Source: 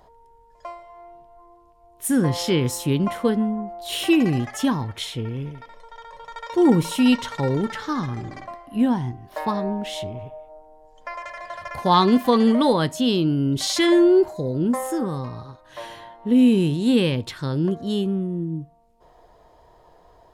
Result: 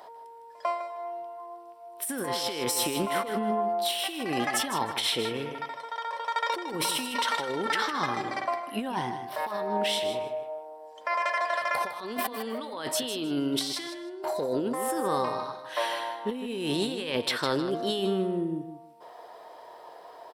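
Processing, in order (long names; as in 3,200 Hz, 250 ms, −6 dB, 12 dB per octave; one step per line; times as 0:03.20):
high-pass filter 490 Hz 12 dB per octave
notch filter 6,700 Hz, Q 5.2
compressor whose output falls as the input rises −34 dBFS, ratio −1
on a send: repeating echo 156 ms, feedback 19%, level −10 dB
on the sum: level +3 dB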